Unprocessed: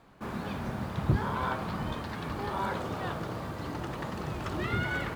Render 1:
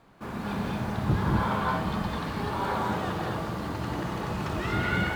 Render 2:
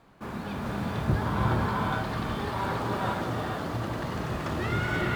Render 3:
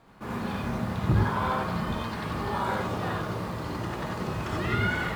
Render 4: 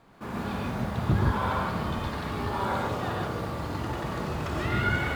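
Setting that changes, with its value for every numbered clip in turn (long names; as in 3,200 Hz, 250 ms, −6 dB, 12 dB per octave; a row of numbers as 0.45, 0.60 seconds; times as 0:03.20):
reverb whose tail is shaped and stops, gate: 270, 510, 110, 170 milliseconds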